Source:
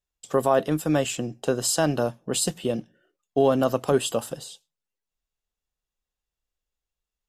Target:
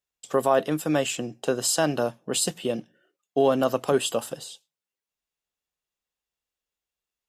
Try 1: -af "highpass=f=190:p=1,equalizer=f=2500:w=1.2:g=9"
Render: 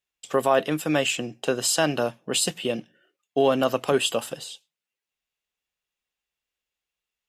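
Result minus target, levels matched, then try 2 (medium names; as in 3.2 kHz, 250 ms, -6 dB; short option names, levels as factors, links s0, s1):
2 kHz band +3.5 dB
-af "highpass=f=190:p=1,equalizer=f=2500:w=1.2:g=2"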